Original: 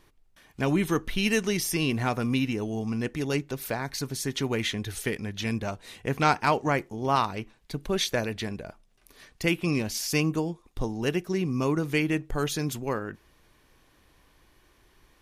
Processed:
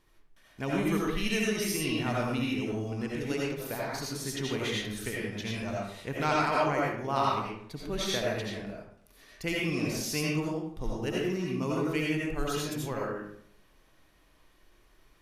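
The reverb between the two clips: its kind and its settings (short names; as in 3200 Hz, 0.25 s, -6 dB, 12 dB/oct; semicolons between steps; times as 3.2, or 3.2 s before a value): digital reverb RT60 0.67 s, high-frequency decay 0.65×, pre-delay 45 ms, DRR -4.5 dB; gain -8 dB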